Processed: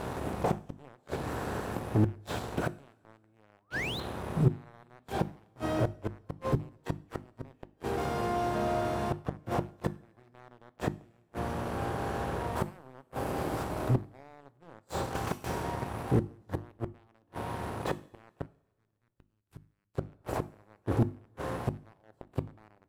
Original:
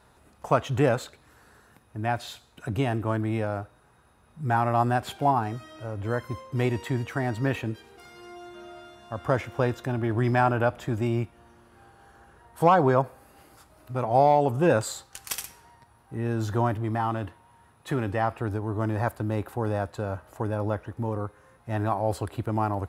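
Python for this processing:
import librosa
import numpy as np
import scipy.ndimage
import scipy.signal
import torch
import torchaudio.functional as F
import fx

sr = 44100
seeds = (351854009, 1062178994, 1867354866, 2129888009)

y = fx.bin_compress(x, sr, power=0.6)
y = fx.tilt_shelf(y, sr, db=6.0, hz=690.0)
y = fx.spec_paint(y, sr, seeds[0], shape='rise', start_s=3.52, length_s=0.48, low_hz=630.0, high_hz=4300.0, level_db=-32.0)
y = fx.gate_flip(y, sr, shuts_db=-13.0, range_db=-33)
y = fx.leveller(y, sr, passes=3)
y = fx.hum_notches(y, sr, base_hz=50, count=7)
y = fx.tone_stack(y, sr, knobs='6-0-2', at=(18.46, 19.95))
y = fx.rev_double_slope(y, sr, seeds[1], early_s=0.45, late_s=1.9, knee_db=-19, drr_db=16.0)
y = fx.slew_limit(y, sr, full_power_hz=110.0)
y = y * 10.0 ** (-8.0 / 20.0)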